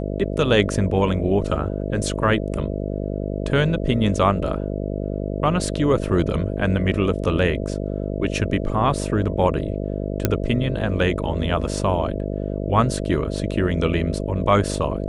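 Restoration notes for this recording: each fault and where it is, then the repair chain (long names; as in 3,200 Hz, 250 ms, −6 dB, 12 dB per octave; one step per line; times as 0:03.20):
mains buzz 50 Hz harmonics 13 −26 dBFS
0:10.25: click −3 dBFS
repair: click removal
hum removal 50 Hz, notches 13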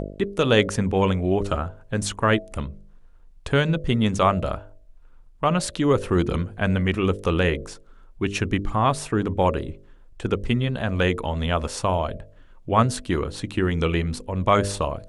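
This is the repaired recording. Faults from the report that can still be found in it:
none of them is left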